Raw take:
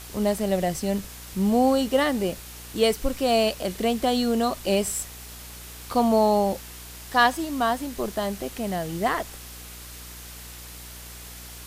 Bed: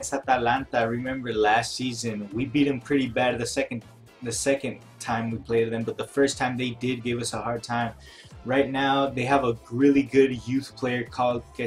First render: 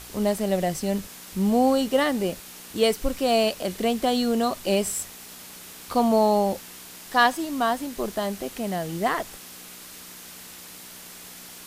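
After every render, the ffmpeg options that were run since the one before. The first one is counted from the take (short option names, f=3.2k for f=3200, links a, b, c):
-af "bandreject=f=60:t=h:w=4,bandreject=f=120:t=h:w=4"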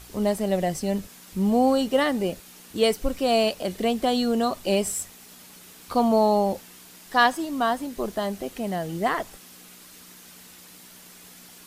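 -af "afftdn=nr=6:nf=-43"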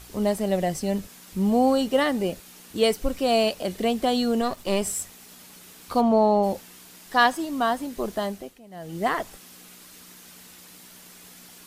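-filter_complex "[0:a]asettb=1/sr,asplit=3[a][b][c];[a]atrim=end=4.414[d];[b]atrim=start=4.41:end=4.82,asetpts=PTS-STARTPTS,afade=t=in:d=0.004:c=qsin,afade=t=out:st=0.406:d=0.004:c=qsin,aeval=exprs='if(lt(val(0),0),0.447*val(0),val(0))':c=same[e];[c]atrim=start=4.816[f];[d][e]acrossfade=d=0.004:c1=hsin:c2=qsin[g];[g][f]acrossfade=d=0.004:c1=qsin:c2=hsin,asplit=3[h][i][j];[h]afade=t=out:st=6:d=0.02[k];[i]aemphasis=mode=reproduction:type=75fm,afade=t=in:st=6:d=0.02,afade=t=out:st=6.42:d=0.02[l];[j]afade=t=in:st=6.42:d=0.02[m];[k][l][m]amix=inputs=3:normalize=0,asplit=3[n][o][p];[n]atrim=end=8.6,asetpts=PTS-STARTPTS,afade=t=out:st=8.23:d=0.37:silence=0.112202[q];[o]atrim=start=8.6:end=8.7,asetpts=PTS-STARTPTS,volume=-19dB[r];[p]atrim=start=8.7,asetpts=PTS-STARTPTS,afade=t=in:d=0.37:silence=0.112202[s];[q][r][s]concat=n=3:v=0:a=1"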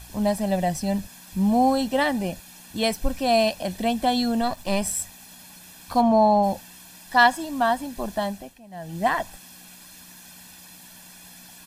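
-af "aecho=1:1:1.2:0.66"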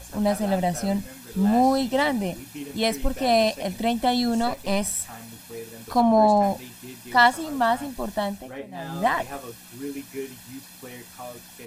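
-filter_complex "[1:a]volume=-15dB[a];[0:a][a]amix=inputs=2:normalize=0"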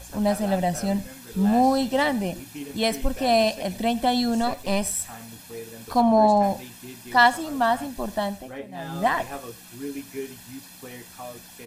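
-af "aecho=1:1:97:0.0841"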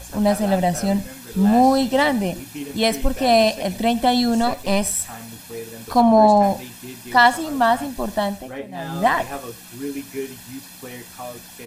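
-af "volume=4.5dB,alimiter=limit=-3dB:level=0:latency=1"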